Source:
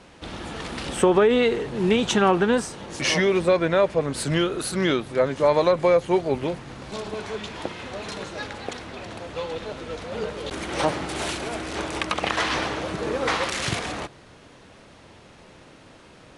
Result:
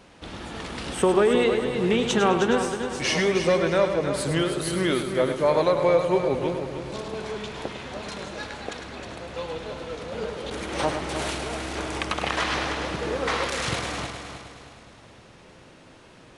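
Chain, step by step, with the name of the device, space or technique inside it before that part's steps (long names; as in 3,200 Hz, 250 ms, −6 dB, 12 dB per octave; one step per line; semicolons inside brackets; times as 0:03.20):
multi-head tape echo (echo machine with several playback heads 104 ms, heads first and third, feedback 54%, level −9 dB; tape wow and flutter 22 cents)
level −2.5 dB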